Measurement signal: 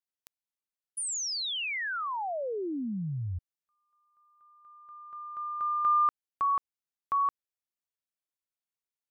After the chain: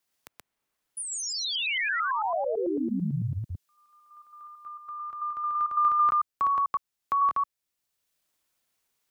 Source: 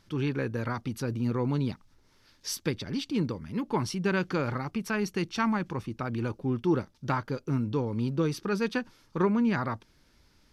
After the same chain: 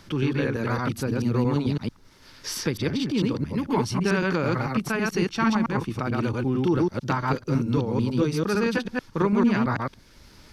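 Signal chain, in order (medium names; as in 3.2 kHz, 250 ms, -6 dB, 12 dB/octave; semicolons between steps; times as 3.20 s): chunks repeated in reverse 111 ms, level -0.5 dB; three bands compressed up and down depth 40%; trim +2.5 dB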